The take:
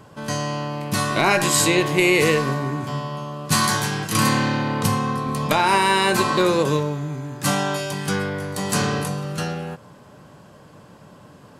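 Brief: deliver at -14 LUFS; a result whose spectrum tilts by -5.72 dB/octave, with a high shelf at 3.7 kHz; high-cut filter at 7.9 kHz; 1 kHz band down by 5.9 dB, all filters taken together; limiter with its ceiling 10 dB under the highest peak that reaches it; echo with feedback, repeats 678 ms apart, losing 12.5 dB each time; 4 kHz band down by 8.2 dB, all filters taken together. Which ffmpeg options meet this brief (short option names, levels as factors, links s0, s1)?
-af "lowpass=7900,equalizer=f=1000:t=o:g=-6,highshelf=f=3700:g=-8.5,equalizer=f=4000:t=o:g=-4.5,alimiter=limit=0.133:level=0:latency=1,aecho=1:1:678|1356|2034:0.237|0.0569|0.0137,volume=4.47"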